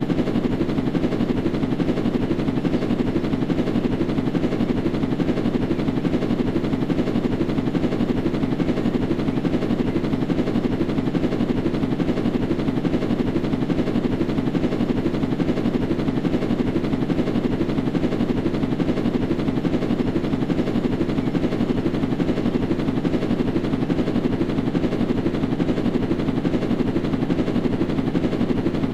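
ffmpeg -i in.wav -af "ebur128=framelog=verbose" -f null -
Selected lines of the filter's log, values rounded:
Integrated loudness:
  I:         -22.3 LUFS
  Threshold: -32.3 LUFS
Loudness range:
  LRA:         0.2 LU
  Threshold: -42.3 LUFS
  LRA low:   -22.4 LUFS
  LRA high:  -22.2 LUFS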